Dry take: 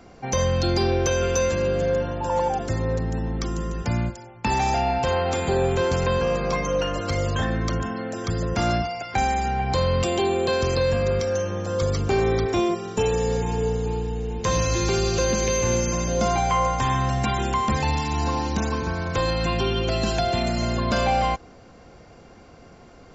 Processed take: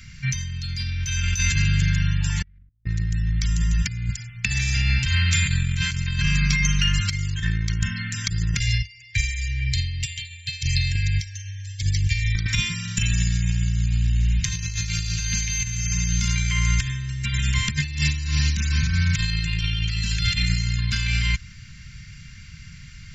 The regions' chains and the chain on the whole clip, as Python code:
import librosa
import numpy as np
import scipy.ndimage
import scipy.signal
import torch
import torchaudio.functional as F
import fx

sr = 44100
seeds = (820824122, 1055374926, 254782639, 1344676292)

y = fx.chain(x, sr, fx.halfwave_hold(),
    fx.lowpass(hz=1800.0, slope=12),
    fx.tilt_eq(slope=-4.5), at=(2.43, 2.84))
y = fx.chain(y, sr, fx.brickwall_bandstop(low_hz=150.0, high_hz=1600.0),
    fx.upward_expand(threshold_db=-36.0, expansion=2.5), at=(8.59, 12.35))
y = scipy.signal.sosfilt(scipy.signal.ellip(3, 1.0, 60, [150.0, 1900.0], 'bandstop', fs=sr, output='sos'), y)
y = fx.over_compress(y, sr, threshold_db=-30.0, ratio=-0.5)
y = y * 10.0 ** (6.5 / 20.0)